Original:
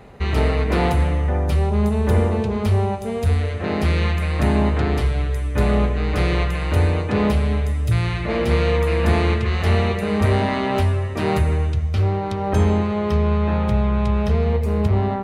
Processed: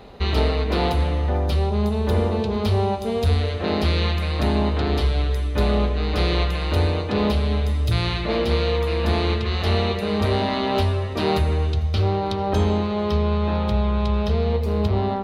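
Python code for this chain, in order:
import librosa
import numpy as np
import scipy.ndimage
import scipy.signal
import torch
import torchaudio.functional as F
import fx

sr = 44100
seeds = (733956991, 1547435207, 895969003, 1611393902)

p1 = fx.graphic_eq(x, sr, hz=(125, 2000, 4000, 8000), db=(-7, -6, 10, -8))
p2 = fx.rider(p1, sr, range_db=10, speed_s=0.5)
y = p2 + fx.echo_feedback(p2, sr, ms=449, feedback_pct=57, wet_db=-24, dry=0)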